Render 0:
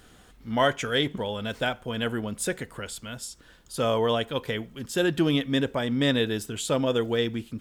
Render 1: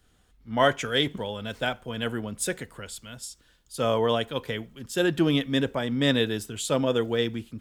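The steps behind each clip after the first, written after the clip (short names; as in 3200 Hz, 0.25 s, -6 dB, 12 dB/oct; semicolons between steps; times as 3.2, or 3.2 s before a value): three-band expander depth 40%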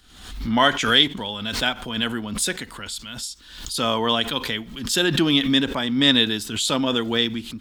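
graphic EQ 125/250/500/1000/4000 Hz -7/+4/-8/+3/+9 dB; backwards sustainer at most 69 dB/s; gain +3.5 dB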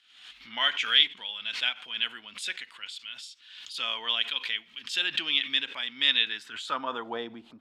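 band-pass sweep 2600 Hz -> 710 Hz, 6.18–7.25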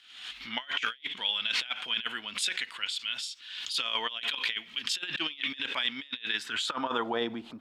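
negative-ratio compressor -34 dBFS, ratio -0.5; gain +2 dB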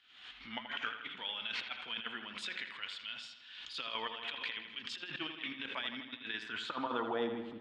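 tape spacing loss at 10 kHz 21 dB; dark delay 81 ms, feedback 60%, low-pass 3700 Hz, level -8 dB; gain -4 dB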